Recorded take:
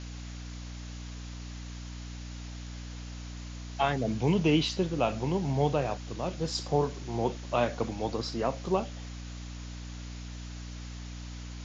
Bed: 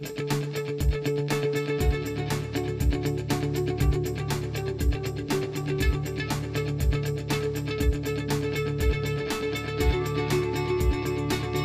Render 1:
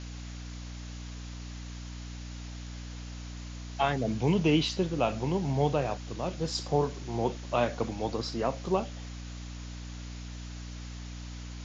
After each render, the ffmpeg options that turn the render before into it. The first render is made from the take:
ffmpeg -i in.wav -af anull out.wav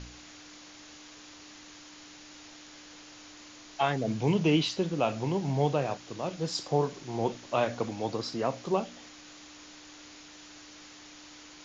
ffmpeg -i in.wav -af "bandreject=frequency=60:width_type=h:width=4,bandreject=frequency=120:width_type=h:width=4,bandreject=frequency=180:width_type=h:width=4,bandreject=frequency=240:width_type=h:width=4" out.wav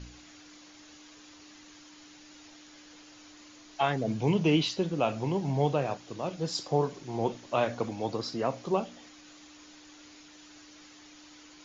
ffmpeg -i in.wav -af "afftdn=noise_reduction=6:noise_floor=-51" out.wav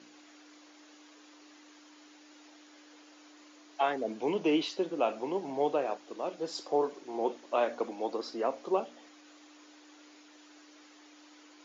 ffmpeg -i in.wav -af "highpass=frequency=290:width=0.5412,highpass=frequency=290:width=1.3066,highshelf=frequency=2200:gain=-7.5" out.wav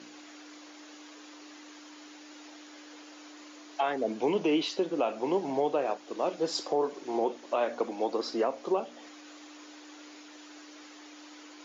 ffmpeg -i in.wav -af "acontrast=72,alimiter=limit=-18dB:level=0:latency=1:release=325" out.wav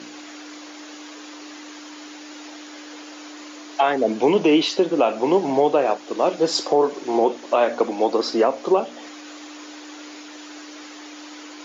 ffmpeg -i in.wav -af "volume=10.5dB" out.wav

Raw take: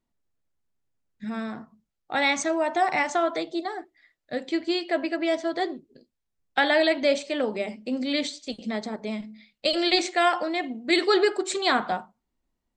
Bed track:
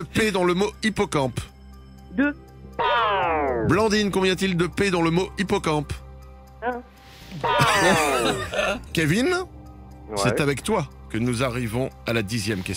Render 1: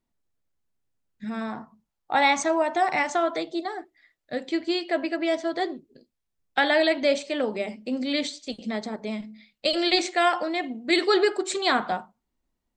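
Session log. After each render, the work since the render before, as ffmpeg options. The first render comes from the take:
ffmpeg -i in.wav -filter_complex "[0:a]asettb=1/sr,asplit=3[link_01][link_02][link_03];[link_01]atrim=end=1.414[link_04];[link_02]atrim=start=1.41:end=2.62,asetpts=PTS-STARTPTS,afade=type=in:duration=0.004:curve=qsin,afade=type=out:start_time=1.206:duration=0.004:curve=qsin,equalizer=frequency=920:width_type=o:width=0.68:gain=8.5[link_05];[link_03]atrim=start=2.616[link_06];[link_04][link_05]acrossfade=duration=0.004:curve1=hsin:curve2=qsin[link_07];[link_07][link_06]acrossfade=duration=0.004:curve1=qsin:curve2=hsin" out.wav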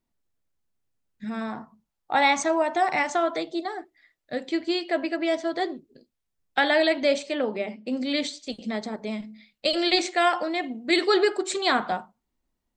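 ffmpeg -i in.wav -filter_complex "[0:a]asplit=3[link_01][link_02][link_03];[link_01]afade=type=out:start_time=7.34:duration=0.02[link_04];[link_02]highpass=120,lowpass=3800,afade=type=in:start_time=7.34:duration=0.02,afade=type=out:start_time=7.86:duration=0.02[link_05];[link_03]afade=type=in:start_time=7.86:duration=0.02[link_06];[link_04][link_05][link_06]amix=inputs=3:normalize=0" out.wav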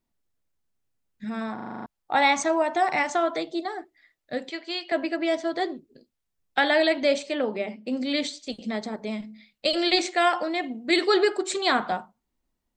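ffmpeg -i in.wav -filter_complex "[0:a]asettb=1/sr,asplit=3[link_01][link_02][link_03];[link_01]atrim=end=4.504[link_04];[link_02]atrim=start=4.5:end=4.92,asetpts=PTS-STARTPTS,afade=type=in:duration=0.004:curve=qsin,afade=type=out:start_time=0.416:duration=0.004:curve=qsin,highpass=620,lowpass=6400[link_05];[link_03]atrim=start=4.916[link_06];[link_04][link_05]acrossfade=duration=0.004:curve1=hsin:curve2=qsin[link_07];[link_07][link_06]acrossfade=duration=0.004:curve1=qsin:curve2=hsin,asplit=9[link_08][link_09][link_10][link_11][link_12][link_13][link_14][link_15][link_16];[link_08]atrim=end=1.582[link_17];[link_09]atrim=start=1.538:end=1.582[link_18];[link_10]atrim=start=1.538:end=1.582[link_19];[link_11]atrim=start=1.538:end=1.582[link_20];[link_12]atrim=start=1.538:end=1.582[link_21];[link_13]atrim=start=1.538:end=1.582[link_22];[link_14]atrim=start=1.538:end=1.582[link_23];[link_15]atrim=start=1.538:end=1.582[link_24];[link_16]atrim=start=1.858[link_25];[link_17][link_18]acrossfade=duration=0.004:curve1=hsin:curve2=hsin[link_26];[link_26][link_19]acrossfade=duration=0.004:curve1=hsin:curve2=hsin[link_27];[link_27][link_20]acrossfade=duration=0.004:curve1=hsin:curve2=hsin[link_28];[link_28][link_21]acrossfade=duration=0.004:curve1=hsin:curve2=hsin[link_29];[link_29][link_22]acrossfade=duration=0.004:curve1=hsin:curve2=hsin[link_30];[link_30][link_23]acrossfade=duration=0.004:curve1=hsin:curve2=hsin[link_31];[link_31][link_24]acrossfade=duration=0.004:curve1=hsin:curve2=hsin[link_32];[link_32][link_25]acrossfade=duration=0.004:curve1=hsin:curve2=hsin" out.wav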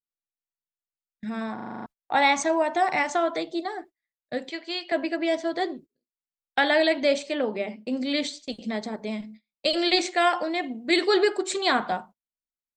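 ffmpeg -i in.wav -af "agate=range=-29dB:threshold=-44dB:ratio=16:detection=peak,bandreject=frequency=1300:width=22" out.wav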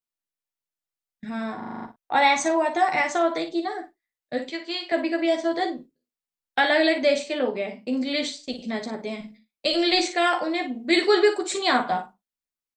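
ffmpeg -i in.wav -filter_complex "[0:a]asplit=2[link_01][link_02];[link_02]adelay=41,volume=-13dB[link_03];[link_01][link_03]amix=inputs=2:normalize=0,aecho=1:1:12|57:0.501|0.316" out.wav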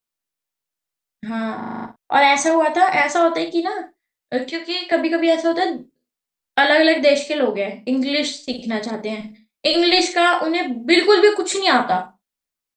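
ffmpeg -i in.wav -af "volume=6dB,alimiter=limit=-3dB:level=0:latency=1" out.wav

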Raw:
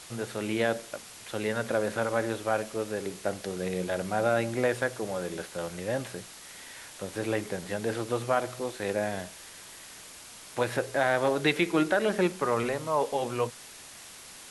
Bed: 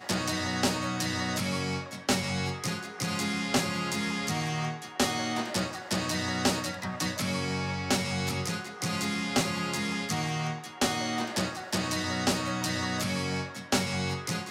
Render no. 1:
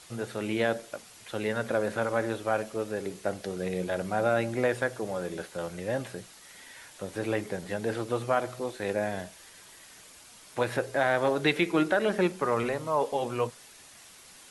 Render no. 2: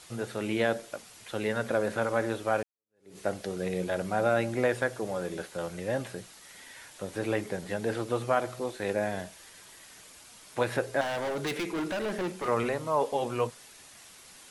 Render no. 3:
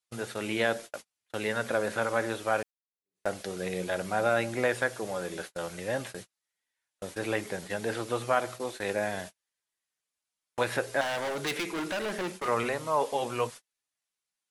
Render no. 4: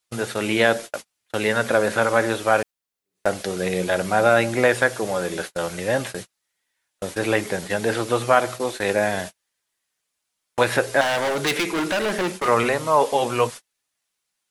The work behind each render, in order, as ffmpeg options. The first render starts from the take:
ffmpeg -i in.wav -af "afftdn=noise_reduction=6:noise_floor=-47" out.wav
ffmpeg -i in.wav -filter_complex "[0:a]asettb=1/sr,asplit=3[link_01][link_02][link_03];[link_01]atrim=end=11.014[link_04];[link_02]atrim=start=11.01:end=12.48,asetpts=PTS-STARTPTS,afade=type=in:duration=0.004:curve=qsin,afade=type=out:start_time=1.466:duration=0.004:curve=qsin,asoftclip=type=hard:threshold=-29dB[link_05];[link_03]atrim=start=12.476[link_06];[link_04][link_05]acrossfade=duration=0.004:curve1=hsin:curve2=qsin[link_07];[link_07][link_06]acrossfade=duration=0.004:curve1=qsin:curve2=hsin,asplit=2[link_08][link_09];[link_08]atrim=end=2.63,asetpts=PTS-STARTPTS,afade=type=out:start_time=2.626:duration=0.004:curve=hsin[link_10];[link_09]atrim=start=2.63,asetpts=PTS-STARTPTS,afade=type=in:duration=0.55:curve=exp[link_11];[link_10][link_11]concat=n=2:v=0:a=1" out.wav
ffmpeg -i in.wav -af "agate=range=-40dB:threshold=-40dB:ratio=16:detection=peak,tiltshelf=frequency=740:gain=-3.5" out.wav
ffmpeg -i in.wav -af "volume=9.5dB" out.wav

